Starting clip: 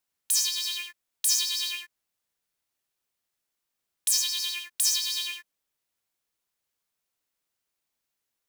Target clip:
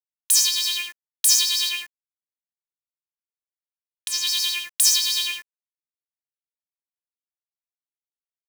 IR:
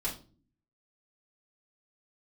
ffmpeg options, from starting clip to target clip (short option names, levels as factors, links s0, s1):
-filter_complex "[0:a]asettb=1/sr,asplit=3[s0][s1][s2];[s0]atrim=end=1.694[s3];[s1]atrim=start=1.69:end=4.27,asetpts=PTS-STARTPTS,afade=t=in:d=0.004:c=qsin,afade=t=out:st=2.576:d=0.004:c=qsin,acrossover=split=4300[s4][s5];[s5]acompressor=threshold=0.0158:ratio=4:attack=1:release=60[s6];[s4][s6]amix=inputs=2:normalize=0[s7];[s2]atrim=start=4.266[s8];[s3][s7]acrossfade=d=0.004:c1=hsin:c2=qsin[s9];[s9][s8]acrossfade=d=0.004:c1=qsin:c2=hsin,acrusher=bits=8:mix=0:aa=0.000001,volume=2.24"